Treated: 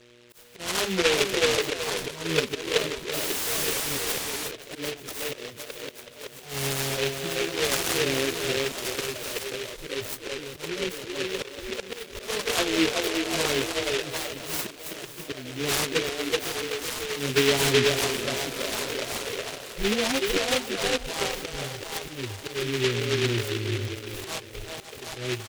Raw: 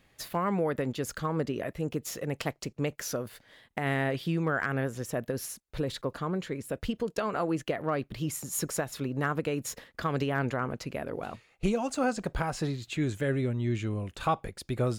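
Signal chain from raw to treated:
spectral dynamics exaggerated over time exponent 1.5
low-shelf EQ 83 Hz +9.5 dB
speech leveller within 5 dB 2 s
repeating echo 309 ms, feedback 44%, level −11 dB
time stretch by phase vocoder 1.7×
hum with harmonics 120 Hz, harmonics 5, −63 dBFS −1 dB per octave
volume swells 272 ms
echo through a band-pass that steps 377 ms, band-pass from 500 Hz, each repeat 0.7 octaves, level 0 dB
sound drawn into the spectrogram fall, 0:03.13–0:04.48, 1,600–3,200 Hz −40 dBFS
graphic EQ with 15 bands 160 Hz −6 dB, 400 Hz +10 dB, 1,000 Hz +4 dB, 2,500 Hz +7 dB
short delay modulated by noise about 2,500 Hz, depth 0.25 ms
level +4.5 dB

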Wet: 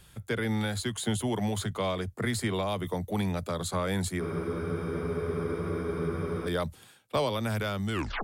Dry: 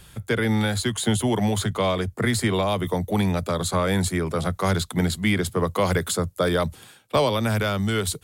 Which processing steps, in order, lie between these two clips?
turntable brake at the end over 0.31 s
frozen spectrum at 0:04.22, 2.25 s
level −7.5 dB

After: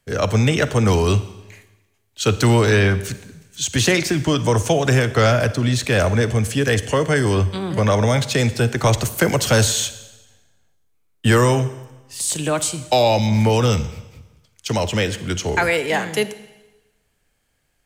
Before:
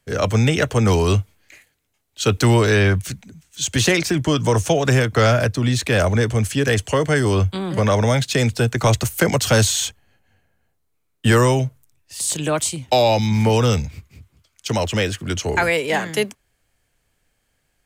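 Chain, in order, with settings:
four-comb reverb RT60 1.1 s, DRR 13.5 dB

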